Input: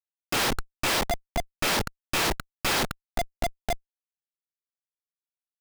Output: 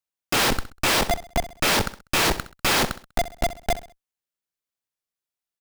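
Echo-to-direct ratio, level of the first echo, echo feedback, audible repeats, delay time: -14.0 dB, -14.5 dB, 37%, 3, 65 ms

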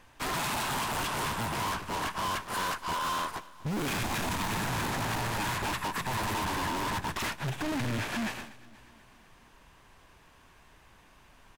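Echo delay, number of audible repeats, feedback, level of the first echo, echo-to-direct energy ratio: 0.243 s, 4, 60%, -20.5 dB, -18.5 dB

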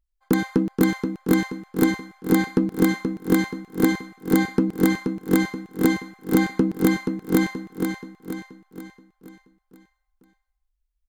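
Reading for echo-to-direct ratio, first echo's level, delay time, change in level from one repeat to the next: -5.0 dB, -6.0 dB, 0.478 s, -6.5 dB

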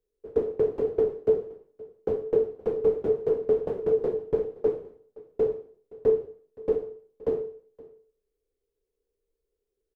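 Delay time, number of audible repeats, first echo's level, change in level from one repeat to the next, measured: 0.52 s, 1, -21.5 dB, no steady repeat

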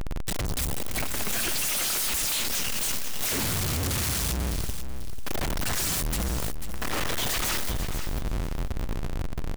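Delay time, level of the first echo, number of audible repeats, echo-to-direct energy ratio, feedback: 0.492 s, -10.0 dB, 2, -10.0 dB, 20%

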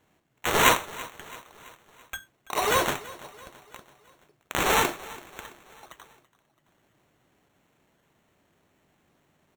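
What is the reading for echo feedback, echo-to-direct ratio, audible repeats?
52%, -17.5 dB, 3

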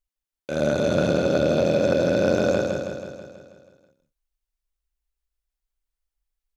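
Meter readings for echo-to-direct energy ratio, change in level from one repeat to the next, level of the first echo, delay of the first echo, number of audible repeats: -3.5 dB, -4.5 dB, -5.5 dB, 0.162 s, 7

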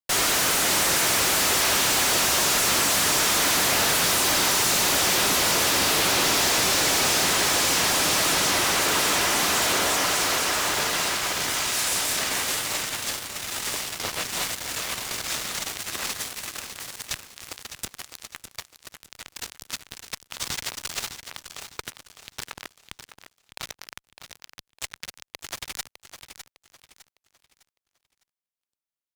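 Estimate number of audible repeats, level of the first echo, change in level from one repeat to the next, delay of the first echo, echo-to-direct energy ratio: 3, -10.0 dB, -9.5 dB, 0.606 s, -9.5 dB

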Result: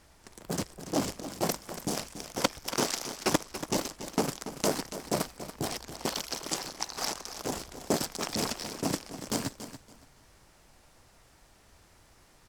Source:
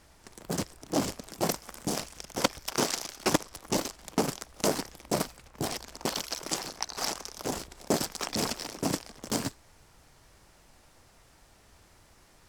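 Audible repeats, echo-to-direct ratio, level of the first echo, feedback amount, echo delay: 2, -12.0 dB, -12.0 dB, 21%, 0.283 s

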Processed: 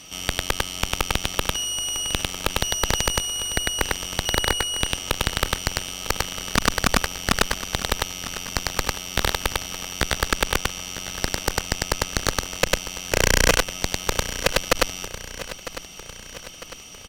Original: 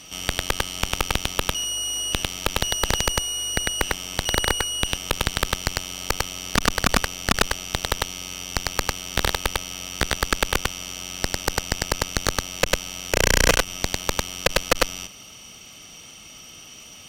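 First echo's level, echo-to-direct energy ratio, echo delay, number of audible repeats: -14.0 dB, -12.5 dB, 0.952 s, 4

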